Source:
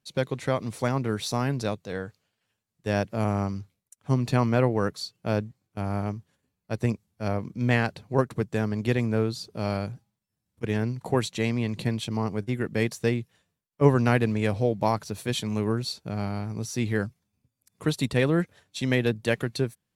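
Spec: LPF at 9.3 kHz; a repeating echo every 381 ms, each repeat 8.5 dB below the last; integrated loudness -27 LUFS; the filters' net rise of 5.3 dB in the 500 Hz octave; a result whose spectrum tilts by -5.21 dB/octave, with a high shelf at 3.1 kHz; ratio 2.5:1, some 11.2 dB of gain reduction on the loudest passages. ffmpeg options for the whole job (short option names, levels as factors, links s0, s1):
-af "lowpass=9300,equalizer=f=500:t=o:g=6,highshelf=f=3100:g=7.5,acompressor=threshold=0.0447:ratio=2.5,aecho=1:1:381|762|1143|1524:0.376|0.143|0.0543|0.0206,volume=1.5"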